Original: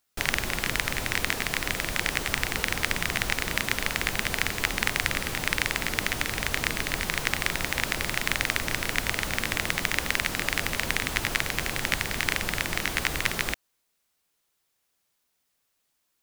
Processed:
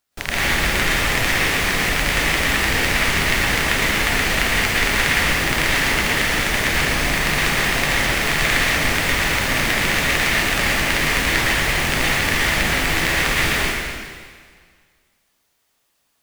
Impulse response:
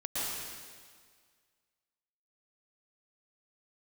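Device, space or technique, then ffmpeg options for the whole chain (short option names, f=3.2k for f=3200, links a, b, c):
stairwell: -filter_complex "[0:a]highshelf=f=5.6k:g=-4[a];[1:a]atrim=start_sample=2205[b];[a][b]afir=irnorm=-1:irlink=0,volume=4.5dB"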